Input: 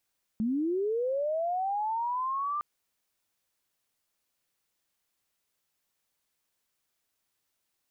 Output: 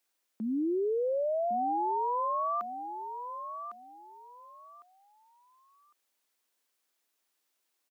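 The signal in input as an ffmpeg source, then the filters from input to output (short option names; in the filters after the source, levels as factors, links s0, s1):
-f lavfi -i "aevalsrc='pow(10,(-25.5-3*t/2.21)/20)*sin(2*PI*(210*t+990*t*t/(2*2.21)))':d=2.21:s=44100"
-filter_complex "[0:a]highpass=f=240:w=0.5412,highpass=f=240:w=1.3066,asplit=2[s0][s1];[s1]aecho=0:1:1105|2210|3315:0.355|0.0852|0.0204[s2];[s0][s2]amix=inputs=2:normalize=0"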